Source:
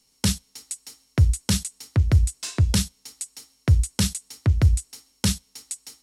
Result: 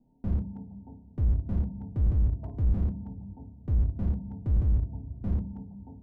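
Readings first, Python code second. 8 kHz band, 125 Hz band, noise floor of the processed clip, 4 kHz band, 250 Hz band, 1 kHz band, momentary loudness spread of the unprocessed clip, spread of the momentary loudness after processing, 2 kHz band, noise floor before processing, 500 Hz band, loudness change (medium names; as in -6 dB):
under -40 dB, -6.5 dB, -53 dBFS, under -40 dB, -6.0 dB, -11.5 dB, 15 LU, 16 LU, under -25 dB, -65 dBFS, -8.5 dB, -6.5 dB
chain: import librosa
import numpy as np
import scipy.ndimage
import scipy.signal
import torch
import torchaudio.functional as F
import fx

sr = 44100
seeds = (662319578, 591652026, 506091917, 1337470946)

p1 = scipy.signal.sosfilt(scipy.signal.cheby1(6, 9, 940.0, 'lowpass', fs=sr, output='sos'), x)
p2 = fx.low_shelf(p1, sr, hz=240.0, db=9.5)
p3 = p2 + fx.room_flutter(p2, sr, wall_m=5.1, rt60_s=0.22, dry=0)
p4 = fx.rev_double_slope(p3, sr, seeds[0], early_s=0.54, late_s=3.6, knee_db=-20, drr_db=11.5)
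p5 = fx.over_compress(p4, sr, threshold_db=-23.0, ratio=-0.5)
p6 = p4 + (p5 * 10.0 ** (1.5 / 20.0))
p7 = fx.slew_limit(p6, sr, full_power_hz=8.2)
y = p7 * 10.0 ** (-3.0 / 20.0)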